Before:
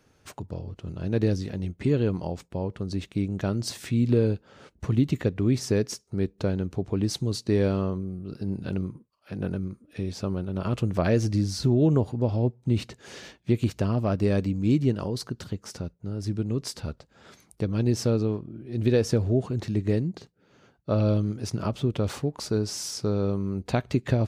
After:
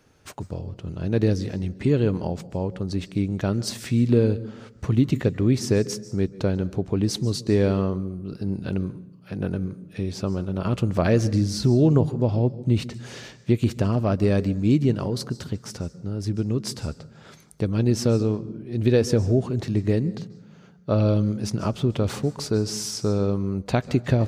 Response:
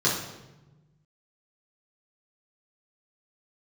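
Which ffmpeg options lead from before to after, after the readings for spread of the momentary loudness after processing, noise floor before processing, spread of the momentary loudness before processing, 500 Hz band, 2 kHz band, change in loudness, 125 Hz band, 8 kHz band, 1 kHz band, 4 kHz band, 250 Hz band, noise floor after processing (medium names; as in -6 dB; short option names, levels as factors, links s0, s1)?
13 LU, -64 dBFS, 12 LU, +3.0 dB, +3.0 dB, +3.0 dB, +3.0 dB, +3.0 dB, +3.0 dB, +3.0 dB, +3.0 dB, -50 dBFS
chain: -filter_complex "[0:a]asplit=2[s0][s1];[s1]bass=f=250:g=3,treble=f=4000:g=6[s2];[1:a]atrim=start_sample=2205,asetrate=52920,aresample=44100,adelay=132[s3];[s2][s3]afir=irnorm=-1:irlink=0,volume=0.0251[s4];[s0][s4]amix=inputs=2:normalize=0,volume=1.41"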